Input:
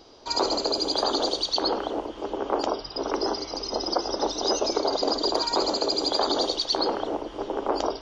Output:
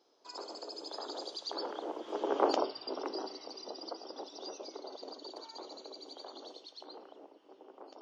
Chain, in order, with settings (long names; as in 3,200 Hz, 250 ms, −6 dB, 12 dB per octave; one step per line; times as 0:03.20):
source passing by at 0:02.40, 15 m/s, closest 3.1 metres
Chebyshev high-pass filter 320 Hz, order 2
in parallel at −3 dB: downward compressor, threshold −48 dBFS, peak gain reduction 25 dB
on the sum: level −2 dB